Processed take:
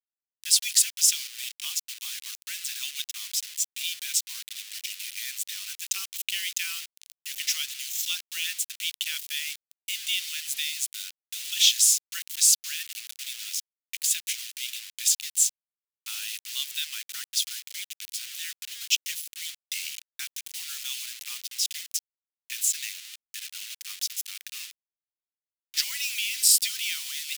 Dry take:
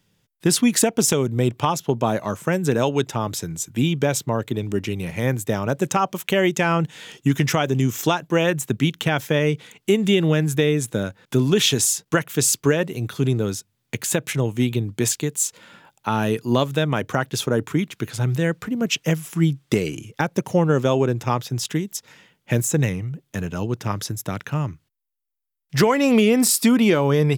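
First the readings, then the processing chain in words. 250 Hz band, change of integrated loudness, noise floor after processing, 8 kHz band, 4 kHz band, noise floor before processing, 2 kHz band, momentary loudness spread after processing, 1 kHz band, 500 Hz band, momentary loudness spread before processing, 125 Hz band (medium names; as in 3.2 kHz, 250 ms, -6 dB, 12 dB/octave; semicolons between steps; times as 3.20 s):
under -40 dB, -5.5 dB, under -85 dBFS, +1.0 dB, +1.5 dB, -73 dBFS, -8.0 dB, 16 LU, under -30 dB, under -40 dB, 10 LU, under -40 dB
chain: bit crusher 5-bit; inverse Chebyshev high-pass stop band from 450 Hz, stop band 80 dB; dynamic bell 5 kHz, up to +3 dB, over -37 dBFS, Q 2.4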